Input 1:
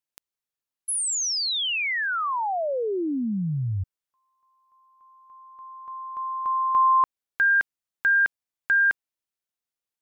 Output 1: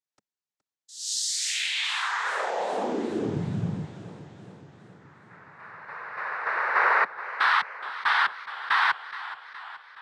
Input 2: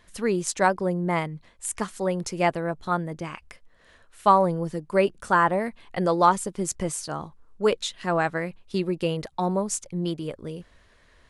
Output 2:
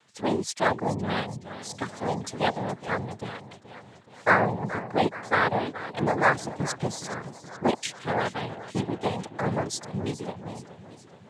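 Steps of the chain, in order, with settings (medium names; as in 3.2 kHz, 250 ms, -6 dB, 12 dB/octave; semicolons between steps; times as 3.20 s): noise-vocoded speech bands 6; modulated delay 422 ms, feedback 59%, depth 97 cents, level -14.5 dB; trim -2.5 dB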